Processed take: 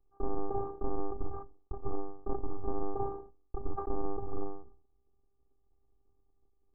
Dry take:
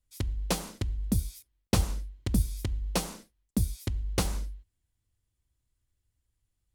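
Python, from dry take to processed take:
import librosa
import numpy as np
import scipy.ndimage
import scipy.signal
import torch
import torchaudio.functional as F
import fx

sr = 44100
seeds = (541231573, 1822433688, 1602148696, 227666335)

y = fx.halfwave_hold(x, sr)
y = fx.over_compress(y, sr, threshold_db=-27.0, ratio=-0.5)
y = scipy.signal.sosfilt(scipy.signal.butter(12, 1200.0, 'lowpass', fs=sr, output='sos'), y)
y = fx.robotise(y, sr, hz=397.0)
y = fx.sustainer(y, sr, db_per_s=110.0)
y = y * 10.0 ** (1.0 / 20.0)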